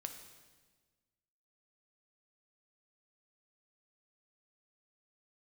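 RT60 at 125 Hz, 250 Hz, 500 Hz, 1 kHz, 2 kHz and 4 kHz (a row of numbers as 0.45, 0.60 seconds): 1.8, 1.7, 1.5, 1.3, 1.3, 1.3 seconds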